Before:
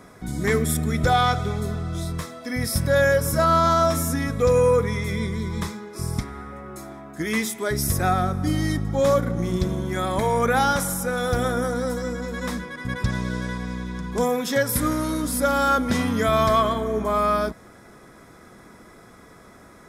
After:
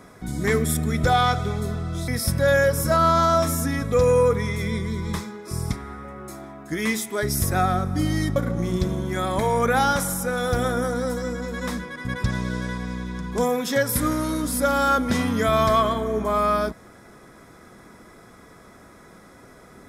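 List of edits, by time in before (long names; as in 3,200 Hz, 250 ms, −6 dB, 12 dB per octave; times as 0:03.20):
0:02.08–0:02.56: remove
0:08.84–0:09.16: remove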